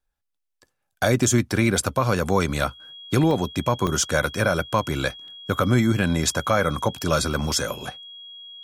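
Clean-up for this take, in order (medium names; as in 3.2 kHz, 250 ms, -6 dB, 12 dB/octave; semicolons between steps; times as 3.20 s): band-stop 3.3 kHz, Q 30; interpolate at 3.31/3.87/5.28 s, 1.3 ms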